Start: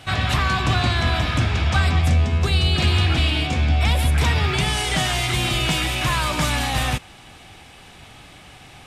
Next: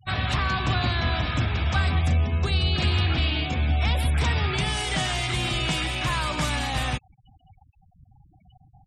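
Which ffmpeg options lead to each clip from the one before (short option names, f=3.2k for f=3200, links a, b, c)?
-af "afftfilt=real='re*gte(hypot(re,im),0.0251)':imag='im*gte(hypot(re,im),0.0251)':win_size=1024:overlap=0.75,volume=-4.5dB"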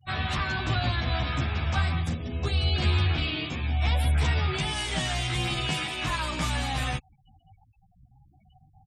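-filter_complex "[0:a]asplit=2[a][b];[b]adelay=11.7,afreqshift=0.72[c];[a][c]amix=inputs=2:normalize=1"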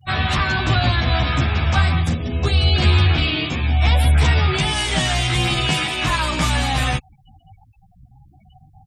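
-af "acontrast=32,volume=4dB"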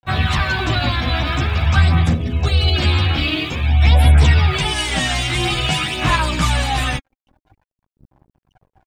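-af "aeval=exprs='sgn(val(0))*max(abs(val(0))-0.00531,0)':c=same,aphaser=in_gain=1:out_gain=1:delay=3.8:decay=0.41:speed=0.49:type=sinusoidal"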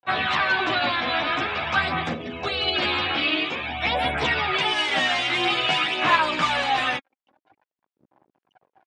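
-af "highpass=380,lowpass=3.5k"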